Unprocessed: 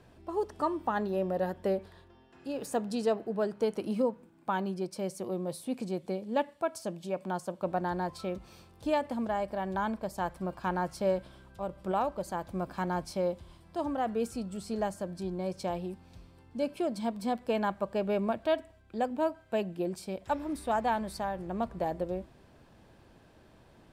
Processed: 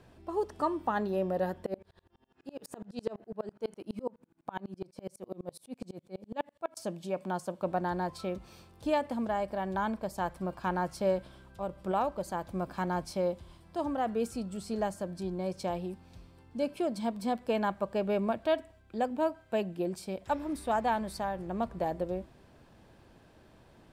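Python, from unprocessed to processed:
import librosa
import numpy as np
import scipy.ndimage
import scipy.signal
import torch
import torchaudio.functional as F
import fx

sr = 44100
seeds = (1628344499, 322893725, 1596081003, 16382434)

y = fx.tremolo_decay(x, sr, direction='swelling', hz=12.0, depth_db=32, at=(1.66, 6.77))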